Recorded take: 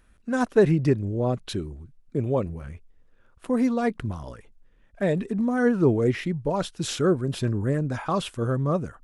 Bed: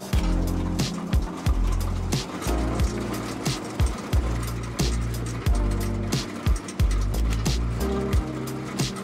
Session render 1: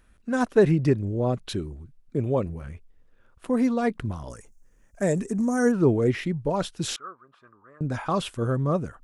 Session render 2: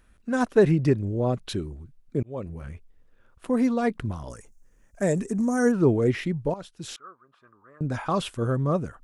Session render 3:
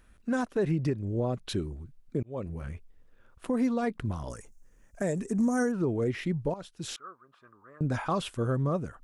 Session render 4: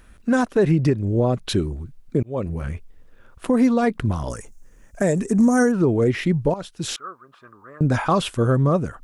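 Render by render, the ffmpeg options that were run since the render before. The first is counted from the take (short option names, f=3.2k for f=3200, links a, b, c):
-filter_complex "[0:a]asettb=1/sr,asplit=3[a][b][c];[a]atrim=end=4.304[d];[b]atrim=start=4.3:end=5.72,asetpts=PTS-STARTPTS,afade=t=in:d=0.004:c=qsin,afade=t=out:st=1.416:d=0.004:c=qsin,highshelf=f=4.9k:t=q:w=3:g=10.5[e];[c]atrim=start=5.716[f];[d][e]acrossfade=d=0.004:c1=hsin:c2=qsin[g];[g][f]acrossfade=d=0.004:c1=qsin:c2=hsin,asettb=1/sr,asplit=3[h][i][j];[h]atrim=end=6.964[k];[i]atrim=start=6.96:end=7.81,asetpts=PTS-STARTPTS,afade=t=in:d=0.004:c=qsin,afade=t=out:st=0.846:d=0.004:c=qsin,bandpass=f=1.2k:t=q:w=9.6[l];[j]atrim=start=7.806[m];[k][l]acrossfade=d=0.004:c1=hsin:c2=qsin[n];[n][m]acrossfade=d=0.004:c1=qsin:c2=hsin"
-filter_complex "[0:a]asplit=3[a][b][c];[a]atrim=end=2.23,asetpts=PTS-STARTPTS,afade=t=out:st=2.226:d=0.004:c=hsin[d];[b]atrim=start=2.23:end=6.54,asetpts=PTS-STARTPTS,afade=t=in:d=0.41,afade=t=out:st=4.306:d=0.004:c=hsin:silence=0.177828[e];[c]atrim=start=6.54,asetpts=PTS-STARTPTS,afade=t=in:d=1.28:silence=0.177828[f];[d][e][f]concat=n=3:v=0:a=1"
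-af "alimiter=limit=-19.5dB:level=0:latency=1:release=356"
-af "volume=10dB"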